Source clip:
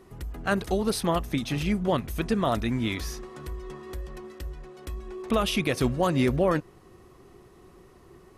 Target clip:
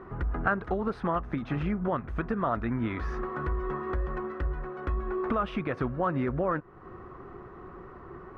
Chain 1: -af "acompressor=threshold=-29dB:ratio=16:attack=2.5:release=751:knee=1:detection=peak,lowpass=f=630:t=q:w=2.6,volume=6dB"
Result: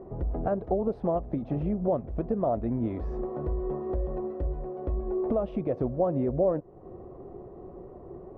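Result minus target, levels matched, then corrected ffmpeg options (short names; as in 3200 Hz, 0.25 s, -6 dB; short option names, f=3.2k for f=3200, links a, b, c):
1000 Hz band -5.5 dB
-af "acompressor=threshold=-29dB:ratio=16:attack=2.5:release=751:knee=1:detection=peak,lowpass=f=1.4k:t=q:w=2.6,volume=6dB"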